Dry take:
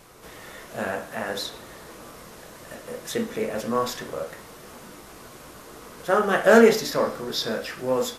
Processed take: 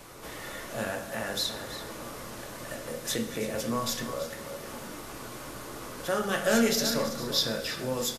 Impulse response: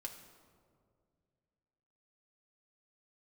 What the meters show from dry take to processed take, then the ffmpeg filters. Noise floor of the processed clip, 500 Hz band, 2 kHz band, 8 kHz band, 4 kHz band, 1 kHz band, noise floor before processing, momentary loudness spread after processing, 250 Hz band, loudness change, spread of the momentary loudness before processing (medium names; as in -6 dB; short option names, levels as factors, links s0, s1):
-42 dBFS, -9.0 dB, -6.5 dB, +3.0 dB, +1.5 dB, -7.5 dB, -45 dBFS, 15 LU, -4.5 dB, -8.0 dB, 26 LU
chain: -filter_complex "[0:a]aecho=1:1:331:0.2,acrossover=split=170|3000[s0][s1][s2];[s1]acompressor=threshold=0.00891:ratio=2[s3];[s0][s3][s2]amix=inputs=3:normalize=0,asplit=2[s4][s5];[1:a]atrim=start_sample=2205[s6];[s5][s6]afir=irnorm=-1:irlink=0,volume=1.5[s7];[s4][s7]amix=inputs=2:normalize=0,volume=0.75"